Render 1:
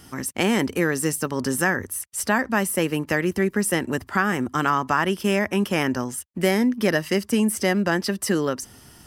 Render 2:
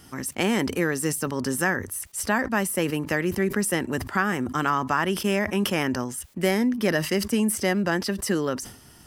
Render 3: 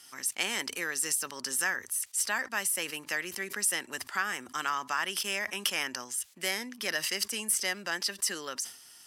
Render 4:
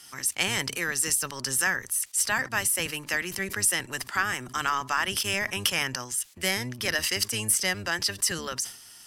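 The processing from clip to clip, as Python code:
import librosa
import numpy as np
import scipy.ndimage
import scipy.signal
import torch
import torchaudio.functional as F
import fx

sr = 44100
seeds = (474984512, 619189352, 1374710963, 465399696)

y1 = fx.sustainer(x, sr, db_per_s=100.0)
y1 = y1 * librosa.db_to_amplitude(-2.5)
y2 = fx.bandpass_q(y1, sr, hz=6300.0, q=0.51)
y2 = y2 * librosa.db_to_amplitude(2.0)
y3 = fx.octave_divider(y2, sr, octaves=1, level_db=2.0)
y3 = y3 * librosa.db_to_amplitude(4.5)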